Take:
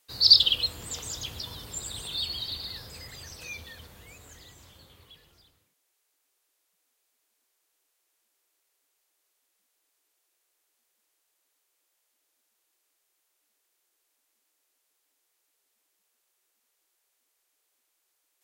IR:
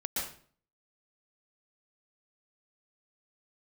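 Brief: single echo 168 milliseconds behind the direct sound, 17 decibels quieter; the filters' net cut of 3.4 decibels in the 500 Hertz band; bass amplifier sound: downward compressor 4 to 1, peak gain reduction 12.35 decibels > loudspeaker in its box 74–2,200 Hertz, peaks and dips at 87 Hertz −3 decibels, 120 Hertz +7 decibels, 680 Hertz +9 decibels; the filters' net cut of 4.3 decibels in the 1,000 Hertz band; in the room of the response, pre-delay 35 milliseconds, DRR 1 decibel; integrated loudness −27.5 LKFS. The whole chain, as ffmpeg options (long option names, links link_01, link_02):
-filter_complex "[0:a]equalizer=frequency=500:width_type=o:gain=-5.5,equalizer=frequency=1000:width_type=o:gain=-7.5,aecho=1:1:168:0.141,asplit=2[link_01][link_02];[1:a]atrim=start_sample=2205,adelay=35[link_03];[link_02][link_03]afir=irnorm=-1:irlink=0,volume=-5.5dB[link_04];[link_01][link_04]amix=inputs=2:normalize=0,acompressor=threshold=-25dB:ratio=4,highpass=frequency=74:width=0.5412,highpass=frequency=74:width=1.3066,equalizer=frequency=87:width_type=q:width=4:gain=-3,equalizer=frequency=120:width_type=q:width=4:gain=7,equalizer=frequency=680:width_type=q:width=4:gain=9,lowpass=frequency=2200:width=0.5412,lowpass=frequency=2200:width=1.3066,volume=18dB"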